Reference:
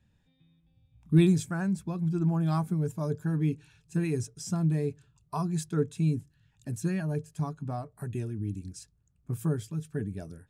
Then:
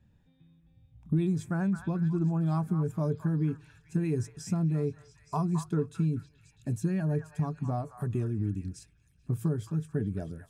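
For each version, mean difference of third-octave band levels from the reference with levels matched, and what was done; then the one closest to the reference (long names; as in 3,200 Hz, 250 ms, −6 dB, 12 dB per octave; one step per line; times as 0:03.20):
3.5 dB: tilt shelving filter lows +4.5 dB, about 1,500 Hz
downward compressor 5 to 1, threshold −25 dBFS, peak gain reduction 12.5 dB
on a send: echo through a band-pass that steps 217 ms, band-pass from 1,300 Hz, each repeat 0.7 octaves, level −6.5 dB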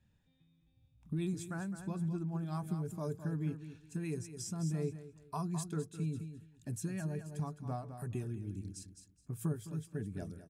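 5.0 dB: downward compressor 5 to 1, threshold −29 dBFS, peak gain reduction 12.5 dB
dynamic equaliser 9,900 Hz, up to +4 dB, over −58 dBFS, Q 0.89
repeating echo 210 ms, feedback 21%, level −9.5 dB
amplitude modulation by smooth noise, depth 60%
level −2 dB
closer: first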